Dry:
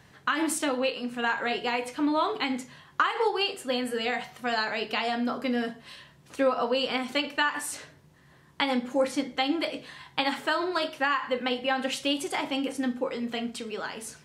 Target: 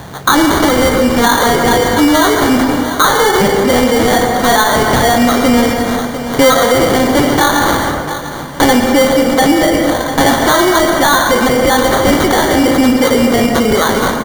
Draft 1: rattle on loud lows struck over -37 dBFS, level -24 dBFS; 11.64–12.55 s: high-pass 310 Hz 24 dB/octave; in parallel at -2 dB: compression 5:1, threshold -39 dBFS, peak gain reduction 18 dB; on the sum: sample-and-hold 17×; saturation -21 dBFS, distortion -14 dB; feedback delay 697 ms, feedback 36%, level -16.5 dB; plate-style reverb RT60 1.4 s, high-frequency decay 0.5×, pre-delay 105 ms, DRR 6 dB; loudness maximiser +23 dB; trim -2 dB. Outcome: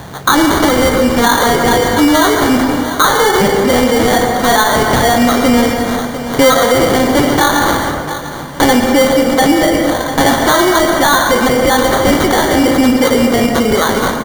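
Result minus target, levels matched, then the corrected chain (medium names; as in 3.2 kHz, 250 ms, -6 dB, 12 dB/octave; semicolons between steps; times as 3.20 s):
compression: peak gain reduction +6.5 dB
rattle on loud lows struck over -37 dBFS, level -24 dBFS; 11.64–12.55 s: high-pass 310 Hz 24 dB/octave; in parallel at -2 dB: compression 5:1, threshold -31 dBFS, peak gain reduction 11.5 dB; on the sum: sample-and-hold 17×; saturation -21 dBFS, distortion -13 dB; feedback delay 697 ms, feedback 36%, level -16.5 dB; plate-style reverb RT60 1.4 s, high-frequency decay 0.5×, pre-delay 105 ms, DRR 6 dB; loudness maximiser +23 dB; trim -2 dB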